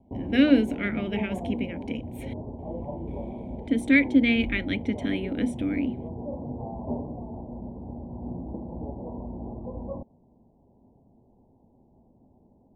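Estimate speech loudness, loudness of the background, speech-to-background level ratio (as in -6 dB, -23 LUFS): -25.5 LUFS, -36.5 LUFS, 11.0 dB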